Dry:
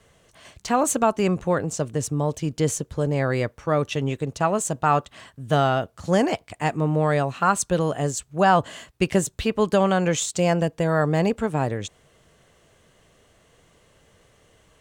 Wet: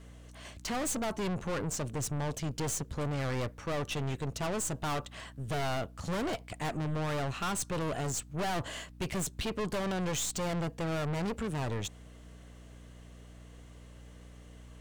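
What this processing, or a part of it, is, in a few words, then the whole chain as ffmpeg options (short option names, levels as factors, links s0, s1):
valve amplifier with mains hum: -af "aeval=exprs='(tanh(35.5*val(0)+0.4)-tanh(0.4))/35.5':c=same,aeval=exprs='val(0)+0.00316*(sin(2*PI*60*n/s)+sin(2*PI*2*60*n/s)/2+sin(2*PI*3*60*n/s)/3+sin(2*PI*4*60*n/s)/4+sin(2*PI*5*60*n/s)/5)':c=same"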